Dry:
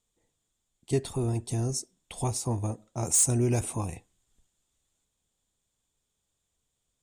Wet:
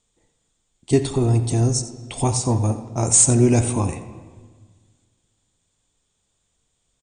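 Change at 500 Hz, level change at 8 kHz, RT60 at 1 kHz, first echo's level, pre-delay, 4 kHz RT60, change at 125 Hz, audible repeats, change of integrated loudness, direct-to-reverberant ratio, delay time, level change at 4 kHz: +10.0 dB, +8.5 dB, 1.5 s, -15.0 dB, 11 ms, 1.4 s, +10.0 dB, 1, +9.5 dB, 8.5 dB, 87 ms, +9.5 dB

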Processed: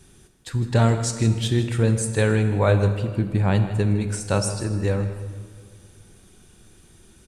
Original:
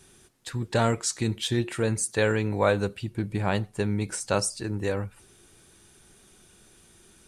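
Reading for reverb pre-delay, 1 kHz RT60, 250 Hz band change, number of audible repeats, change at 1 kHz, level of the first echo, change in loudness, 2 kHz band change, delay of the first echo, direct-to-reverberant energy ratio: 23 ms, 1.8 s, +5.5 dB, 1, +1.5 dB, -14.5 dB, +5.0 dB, +1.0 dB, 158 ms, 8.0 dB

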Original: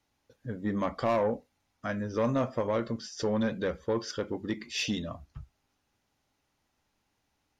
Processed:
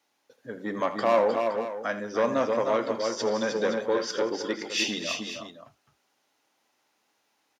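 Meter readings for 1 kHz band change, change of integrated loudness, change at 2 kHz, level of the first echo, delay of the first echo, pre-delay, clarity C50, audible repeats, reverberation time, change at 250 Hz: +6.5 dB, +4.5 dB, +6.5 dB, -13.0 dB, 82 ms, no reverb, no reverb, 4, no reverb, -0.5 dB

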